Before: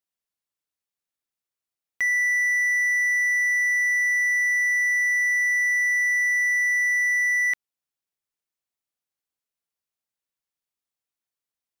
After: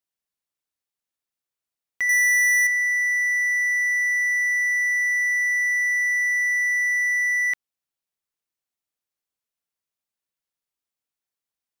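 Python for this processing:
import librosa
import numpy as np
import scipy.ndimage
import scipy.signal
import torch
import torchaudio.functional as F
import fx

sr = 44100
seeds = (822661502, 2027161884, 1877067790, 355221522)

y = fx.leveller(x, sr, passes=5, at=(2.09, 2.67))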